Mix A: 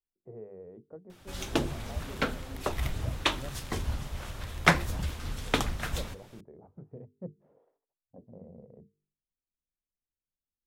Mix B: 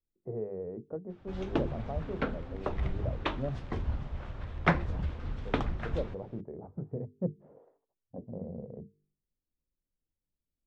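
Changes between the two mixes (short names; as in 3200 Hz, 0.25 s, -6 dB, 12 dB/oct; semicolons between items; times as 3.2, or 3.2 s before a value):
speech +10.0 dB; master: add tape spacing loss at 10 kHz 36 dB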